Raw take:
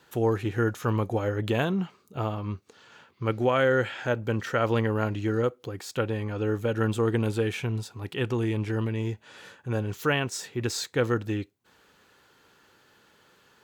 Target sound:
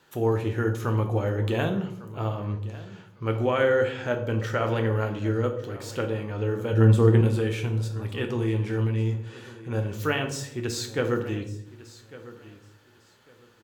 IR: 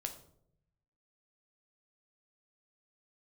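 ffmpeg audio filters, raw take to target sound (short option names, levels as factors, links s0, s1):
-filter_complex "[0:a]asettb=1/sr,asplit=3[s0][s1][s2];[s0]atrim=end=6.734[s3];[s1]atrim=start=6.73:end=7.21,asetpts=PTS-STARTPTS,afade=t=in:d=0.004:c=qsin,afade=t=out:st=0.476:d=0.004:c=qsin,lowshelf=f=400:g=9.5[s4];[s2]atrim=start=7.206[s5];[s3][s4]acrossfade=d=0.004:c1=hsin:c2=qsin[s6];[s6][s5]acrossfade=d=0.004:c1=qsin:c2=hsin,aecho=1:1:1152|2304:0.126|0.0277[s7];[1:a]atrim=start_sample=2205,asetrate=39690,aresample=44100[s8];[s7][s8]afir=irnorm=-1:irlink=0"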